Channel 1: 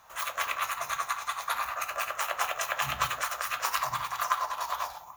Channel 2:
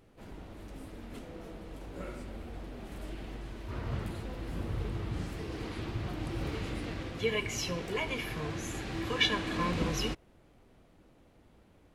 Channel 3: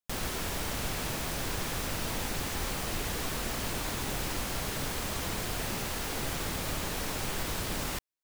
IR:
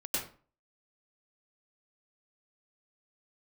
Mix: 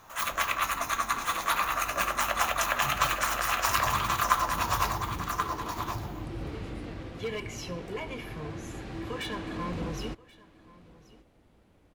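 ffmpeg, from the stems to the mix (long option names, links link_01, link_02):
-filter_complex "[0:a]volume=2.5dB,asplit=2[link_01][link_02];[link_02]volume=-5dB[link_03];[1:a]asoftclip=type=hard:threshold=-27dB,adynamicequalizer=threshold=0.00355:dfrequency=1600:dqfactor=0.7:tfrequency=1600:tqfactor=0.7:attack=5:release=100:ratio=0.375:range=3:mode=cutabove:tftype=highshelf,volume=-1dB,asplit=2[link_04][link_05];[link_05]volume=-21.5dB[link_06];[link_03][link_06]amix=inputs=2:normalize=0,aecho=0:1:1081:1[link_07];[link_01][link_04][link_07]amix=inputs=3:normalize=0"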